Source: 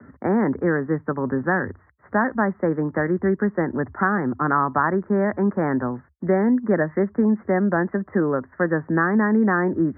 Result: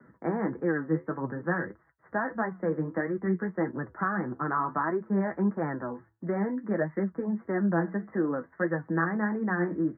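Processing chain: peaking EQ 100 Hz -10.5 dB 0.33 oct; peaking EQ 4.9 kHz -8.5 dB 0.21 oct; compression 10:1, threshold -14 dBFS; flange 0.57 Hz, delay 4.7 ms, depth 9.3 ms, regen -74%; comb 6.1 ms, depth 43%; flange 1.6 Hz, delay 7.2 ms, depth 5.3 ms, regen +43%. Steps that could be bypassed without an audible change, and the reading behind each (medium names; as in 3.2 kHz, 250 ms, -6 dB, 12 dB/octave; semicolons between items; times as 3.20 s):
peaking EQ 4.9 kHz: input has nothing above 2 kHz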